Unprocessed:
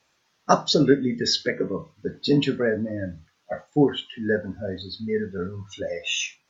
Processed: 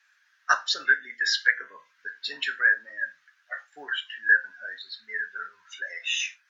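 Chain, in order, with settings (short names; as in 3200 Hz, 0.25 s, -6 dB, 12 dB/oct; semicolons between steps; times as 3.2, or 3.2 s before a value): resonant high-pass 1600 Hz, resonance Q 7.9; gain -4 dB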